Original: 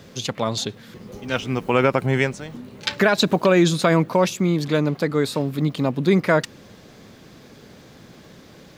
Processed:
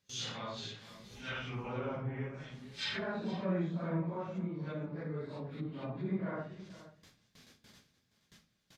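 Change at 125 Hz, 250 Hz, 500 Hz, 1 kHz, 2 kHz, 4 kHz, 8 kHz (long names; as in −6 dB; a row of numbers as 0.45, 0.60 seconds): −15.5 dB, −17.0 dB, −20.5 dB, −19.5 dB, −19.5 dB, −15.5 dB, below −15 dB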